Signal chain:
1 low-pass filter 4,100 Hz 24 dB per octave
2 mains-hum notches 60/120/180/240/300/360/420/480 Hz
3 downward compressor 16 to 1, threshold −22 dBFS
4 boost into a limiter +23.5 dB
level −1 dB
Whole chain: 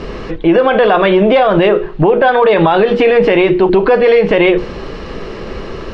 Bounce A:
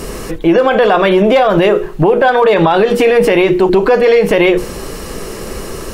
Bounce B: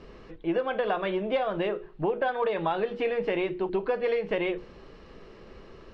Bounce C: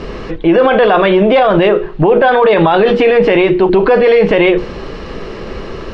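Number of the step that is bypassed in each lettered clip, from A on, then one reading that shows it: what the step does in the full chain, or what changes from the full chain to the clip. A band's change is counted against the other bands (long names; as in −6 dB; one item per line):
1, change in momentary loudness spread −1 LU
4, change in crest factor +4.5 dB
3, average gain reduction 3.0 dB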